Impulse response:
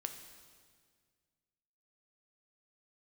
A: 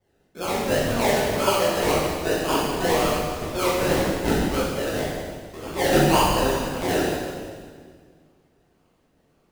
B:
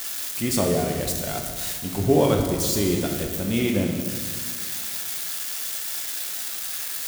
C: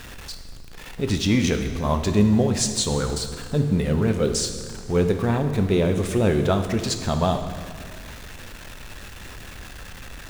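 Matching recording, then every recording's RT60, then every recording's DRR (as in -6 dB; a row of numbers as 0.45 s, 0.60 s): C; 1.8 s, 1.8 s, 1.8 s; -9.0 dB, 1.0 dB, 6.0 dB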